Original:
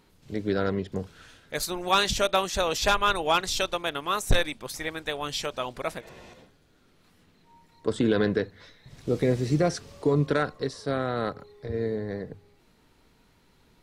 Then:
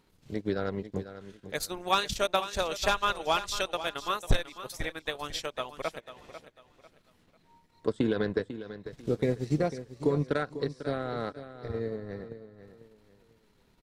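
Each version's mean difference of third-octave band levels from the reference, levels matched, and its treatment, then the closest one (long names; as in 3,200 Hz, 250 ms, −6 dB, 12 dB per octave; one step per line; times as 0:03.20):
4.0 dB: transient designer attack +4 dB, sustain −11 dB
on a send: repeating echo 496 ms, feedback 30%, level −12.5 dB
on the sum: level −5.5 dB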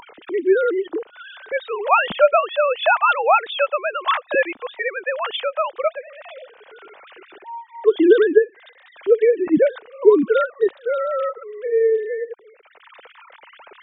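17.0 dB: three sine waves on the formant tracks
in parallel at −1 dB: upward compression, threshold −25 dBFS
on the sum: level +2.5 dB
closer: first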